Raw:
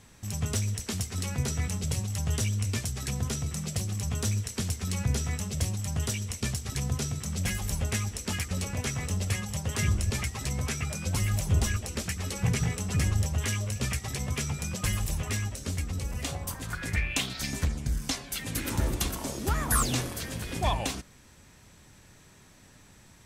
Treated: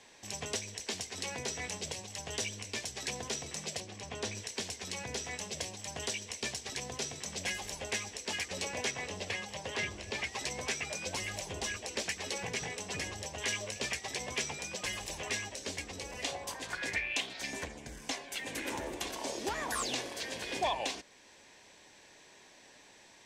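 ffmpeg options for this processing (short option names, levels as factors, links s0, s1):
-filter_complex "[0:a]asettb=1/sr,asplit=3[s0][s1][s2];[s0]atrim=end=3.804[s3];[s1]atrim=start=3.8:end=4.35,asetpts=PTS-STARTPTS,afade=t=in:d=0.004:c=qsin,afade=t=out:st=0.546:d=0.004:c=qsin,aemphasis=mode=reproduction:type=50kf[s4];[s2]atrim=start=4.346[s5];[s3][s4]acrossfade=d=0.004:c1=hsin:c2=qsin[s6];[s6][s5]acrossfade=d=0.004:c1=qsin:c2=hsin,asettb=1/sr,asplit=3[s7][s8][s9];[s7]atrim=end=8.914[s10];[s8]atrim=start=8.91:end=10.32,asetpts=PTS-STARTPTS,afade=t=in:d=0.004:c=qsin,afade=t=out:st=1.406:d=0.004:c=qsin,acrossover=split=4600[s11][s12];[s12]acompressor=threshold=0.00501:ratio=4:attack=1:release=60[s13];[s11][s13]amix=inputs=2:normalize=0[s14];[s9]atrim=start=10.316[s15];[s10][s14]acrossfade=d=0.004:c1=hsin:c2=qsin[s16];[s16][s15]acrossfade=d=0.004:c1=qsin:c2=hsin,asettb=1/sr,asplit=3[s17][s18][s19];[s17]atrim=end=17.204[s20];[s18]atrim=start=17.2:end=19.07,asetpts=PTS-STARTPTS,afade=t=in:d=0.004:c=qsin,afade=t=out:st=1.866:d=0.004:c=qsin,equalizer=f=4500:t=o:w=1.1:g=-7[s21];[s19]atrim=start=19.066[s22];[s20][s21]acrossfade=d=0.004:c1=hsin:c2=qsin[s23];[s23][s22]acrossfade=d=0.004:c1=qsin:c2=hsin,equalizer=f=1300:w=5:g=-12.5,alimiter=limit=0.1:level=0:latency=1:release=477,acrossover=split=330 7100:gain=0.0708 1 0.126[s24][s25][s26];[s24][s25][s26]amix=inputs=3:normalize=0,volume=1.41"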